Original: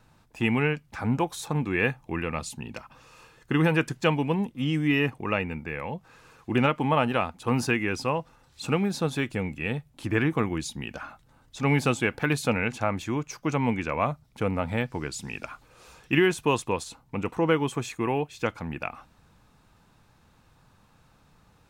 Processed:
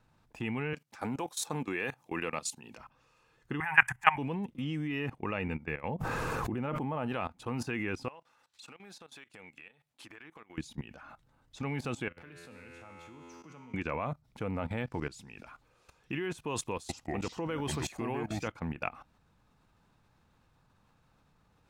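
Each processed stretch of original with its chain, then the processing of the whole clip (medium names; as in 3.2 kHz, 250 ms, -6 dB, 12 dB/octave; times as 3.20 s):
0.73–2.77 s: high-pass 130 Hz + tone controls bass -7 dB, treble +9 dB
3.60–4.18 s: FFT filter 120 Hz 0 dB, 200 Hz -23 dB, 520 Hz -23 dB, 780 Hz +12 dB, 1.3 kHz +7 dB, 1.9 kHz +15 dB, 2.8 kHz +3 dB, 4 kHz -14 dB, 9 kHz +7 dB + three bands expanded up and down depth 40%
5.88–7.06 s: peaking EQ 3.8 kHz -9.5 dB 2.3 oct + swell ahead of each attack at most 22 dB/s
8.08–10.58 s: high-pass 1.4 kHz 6 dB/octave + treble shelf 11 kHz -3 dB + compression 10:1, threshold -43 dBFS
12.08–13.74 s: dynamic bell 680 Hz, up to -4 dB, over -42 dBFS, Q 3 + feedback comb 85 Hz, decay 1.8 s, mix 90% + three bands compressed up and down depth 40%
16.55–18.48 s: treble shelf 4.4 kHz +8.5 dB + ever faster or slower copies 341 ms, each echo -5 st, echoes 2, each echo -6 dB
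whole clip: treble shelf 5.7 kHz -5.5 dB; level held to a coarse grid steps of 17 dB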